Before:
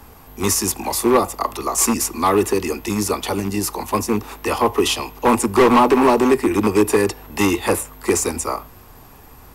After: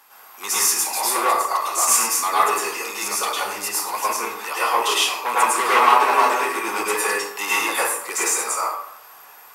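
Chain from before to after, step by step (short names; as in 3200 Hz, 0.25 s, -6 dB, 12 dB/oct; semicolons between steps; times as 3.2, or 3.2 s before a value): HPF 1000 Hz 12 dB/oct; plate-style reverb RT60 0.75 s, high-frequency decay 0.55×, pre-delay 90 ms, DRR -8.5 dB; gain -4 dB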